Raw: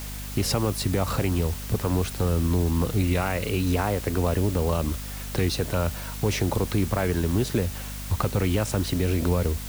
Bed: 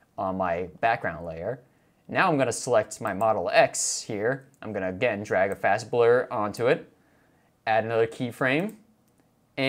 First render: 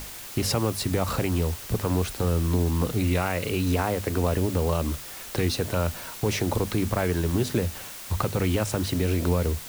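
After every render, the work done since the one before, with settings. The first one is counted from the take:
mains-hum notches 50/100/150/200/250 Hz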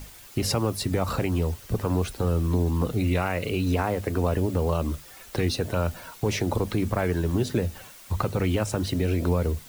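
broadband denoise 9 dB, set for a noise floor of −40 dBFS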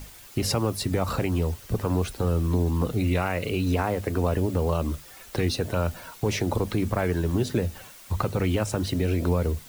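no processing that can be heard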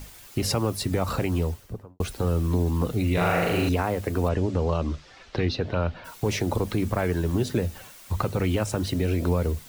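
0:01.38–0:02.00: fade out and dull
0:03.13–0:03.69: flutter between parallel walls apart 6.9 metres, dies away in 1.2 s
0:04.28–0:06.04: low-pass filter 7,300 Hz → 3,900 Hz 24 dB per octave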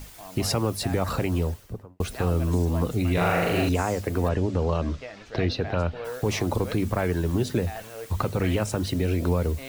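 mix in bed −15.5 dB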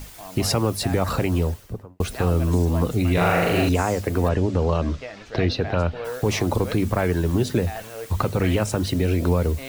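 level +3.5 dB

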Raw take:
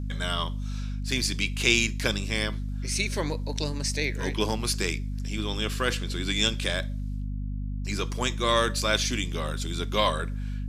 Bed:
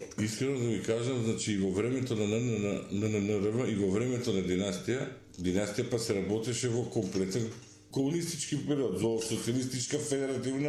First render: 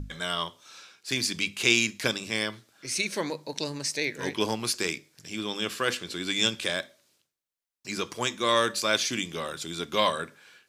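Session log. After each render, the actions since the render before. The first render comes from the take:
mains-hum notches 50/100/150/200/250 Hz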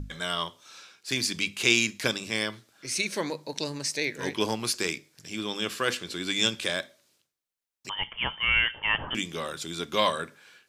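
0:07.89–0:09.15: voice inversion scrambler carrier 3,300 Hz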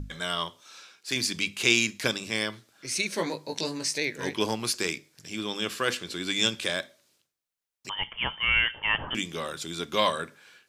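0:00.62–0:01.16: low-shelf EQ 110 Hz −11.5 dB
0:03.16–0:03.98: double-tracking delay 18 ms −4 dB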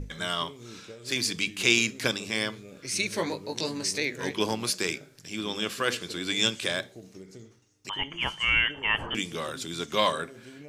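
mix in bed −15 dB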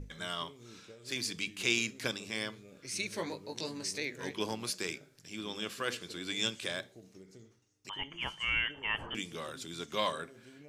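level −8 dB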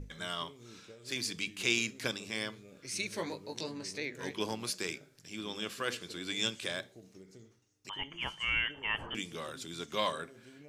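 0:03.63–0:04.15: high-shelf EQ 5,500 Hz −10 dB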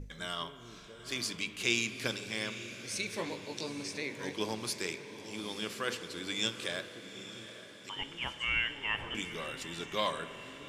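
on a send: feedback delay with all-pass diffusion 853 ms, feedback 54%, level −12.5 dB
on the sum: spring reverb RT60 3.2 s, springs 42 ms, chirp 45 ms, DRR 12 dB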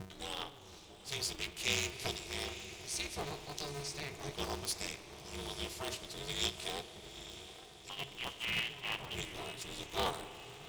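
phaser with its sweep stopped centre 400 Hz, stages 6
ring modulator with a square carrier 140 Hz

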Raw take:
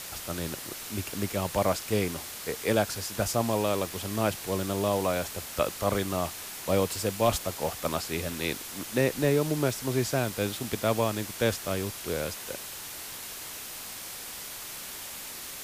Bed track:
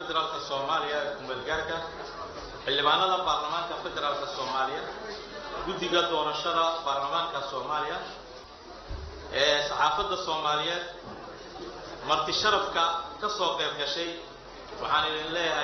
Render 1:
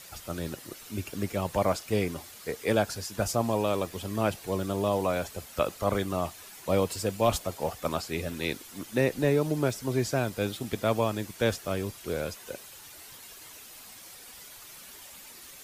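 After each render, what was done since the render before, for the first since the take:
broadband denoise 10 dB, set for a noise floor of −40 dBFS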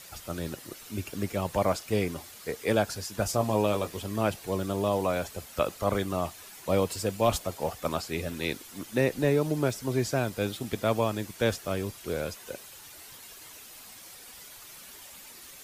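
0:03.31–0:04.01: double-tracking delay 19 ms −7.5 dB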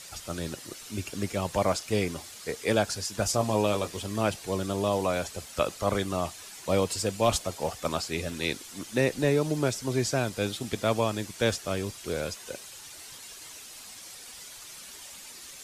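low-pass filter 8,100 Hz 12 dB per octave
high-shelf EQ 4,400 Hz +9.5 dB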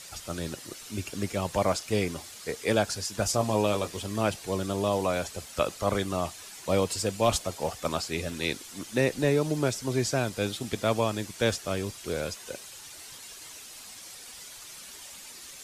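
no processing that can be heard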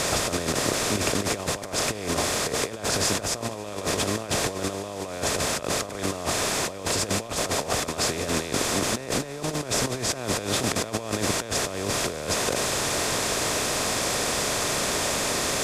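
compressor on every frequency bin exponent 0.4
compressor whose output falls as the input rises −26 dBFS, ratio −0.5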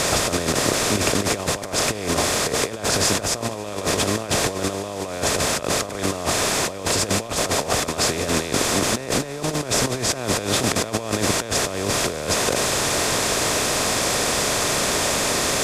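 level +4.5 dB

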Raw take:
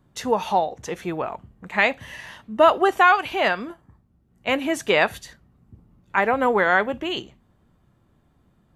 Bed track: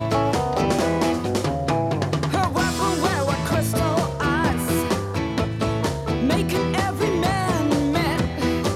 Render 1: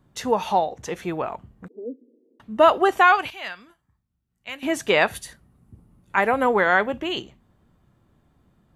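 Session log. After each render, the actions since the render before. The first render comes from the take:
0:01.68–0:02.40: Chebyshev band-pass filter 240–480 Hz, order 4
0:03.30–0:04.63: guitar amp tone stack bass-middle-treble 5-5-5
0:05.15–0:06.43: parametric band 10,000 Hz +14 dB 0.44 octaves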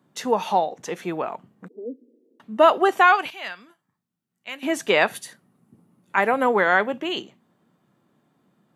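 high-pass filter 160 Hz 24 dB per octave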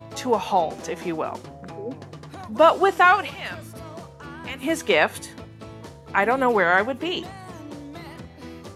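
mix in bed track −17.5 dB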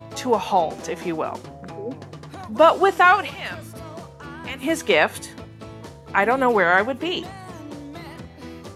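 level +1.5 dB
brickwall limiter −3 dBFS, peak gain reduction 1 dB

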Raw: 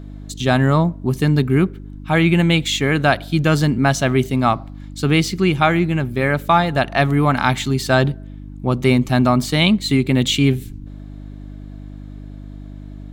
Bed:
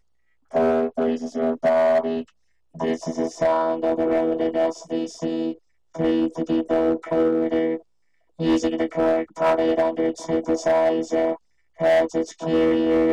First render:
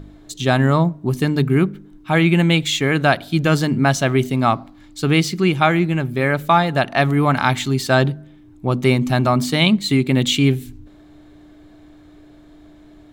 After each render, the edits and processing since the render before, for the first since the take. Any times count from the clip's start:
hum removal 50 Hz, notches 5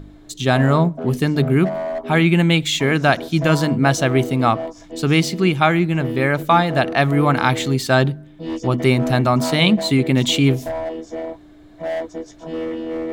mix in bed −7 dB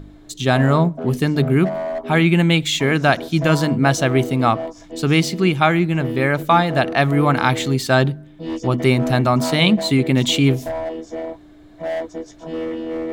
no processing that can be heard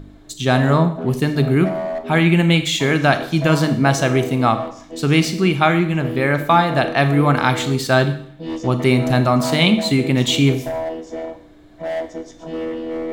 four-comb reverb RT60 0.63 s, combs from 28 ms, DRR 9 dB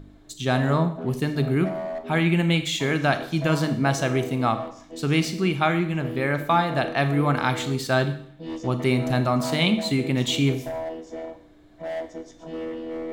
level −6.5 dB

